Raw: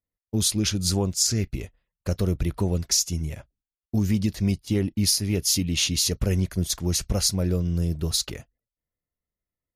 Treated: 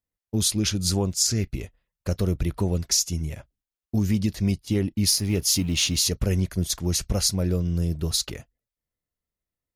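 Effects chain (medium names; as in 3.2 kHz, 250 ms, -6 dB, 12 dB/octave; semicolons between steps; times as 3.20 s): 5.06–6.09 s: companding laws mixed up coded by mu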